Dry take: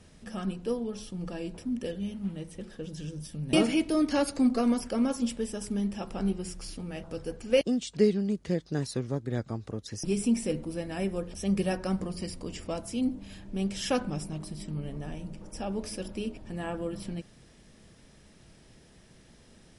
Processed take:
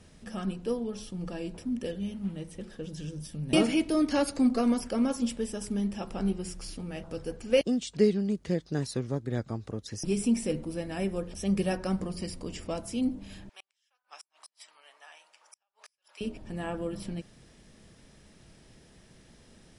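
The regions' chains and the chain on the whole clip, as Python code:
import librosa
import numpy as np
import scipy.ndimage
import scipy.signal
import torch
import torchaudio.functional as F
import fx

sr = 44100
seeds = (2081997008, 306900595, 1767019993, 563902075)

y = fx.chain(x, sr, fx.highpass(hz=910.0, slope=24),
    fx.gate_flip(shuts_db=-34.0, range_db=-41),
    fx.high_shelf(hz=9300.0, db=-7.5), at=(13.49, 16.21))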